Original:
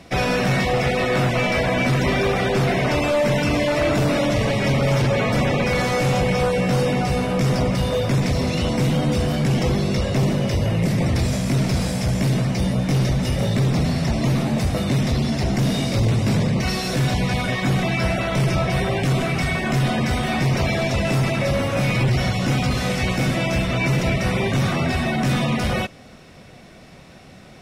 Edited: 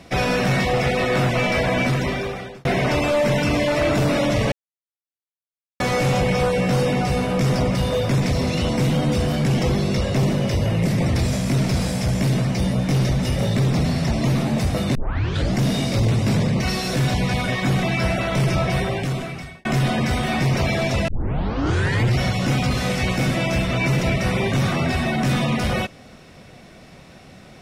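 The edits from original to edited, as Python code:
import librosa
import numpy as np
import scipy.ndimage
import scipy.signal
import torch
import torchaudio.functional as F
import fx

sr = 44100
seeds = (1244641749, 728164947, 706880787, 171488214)

y = fx.edit(x, sr, fx.fade_out_span(start_s=1.79, length_s=0.86),
    fx.silence(start_s=4.52, length_s=1.28),
    fx.tape_start(start_s=14.95, length_s=0.6),
    fx.fade_out_span(start_s=18.73, length_s=0.92),
    fx.tape_start(start_s=21.08, length_s=1.06), tone=tone)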